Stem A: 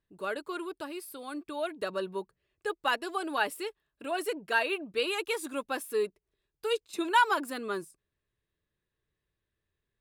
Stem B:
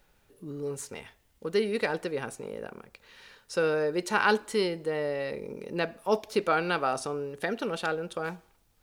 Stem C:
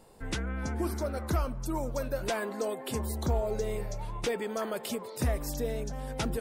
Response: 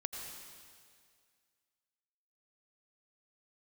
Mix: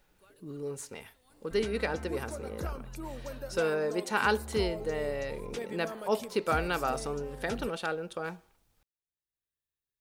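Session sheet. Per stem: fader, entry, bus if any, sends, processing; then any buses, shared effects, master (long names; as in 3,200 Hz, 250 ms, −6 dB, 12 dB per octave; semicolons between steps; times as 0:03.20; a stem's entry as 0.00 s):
−2.5 dB, 0.00 s, no send, first-order pre-emphasis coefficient 0.8; downward compressor, threshold −47 dBFS, peak gain reduction 16.5 dB; automatic ducking −11 dB, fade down 0.30 s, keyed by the second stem
−3.0 dB, 0.00 s, no send, no processing
−8.0 dB, 1.30 s, no send, no processing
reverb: not used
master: no processing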